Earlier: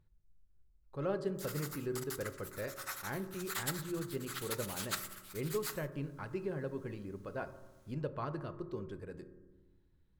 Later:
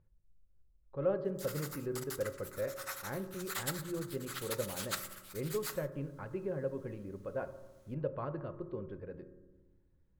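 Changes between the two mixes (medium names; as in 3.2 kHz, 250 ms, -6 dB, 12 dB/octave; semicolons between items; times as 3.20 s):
speech: add distance through air 400 m; master: add peaking EQ 540 Hz +9 dB 0.24 oct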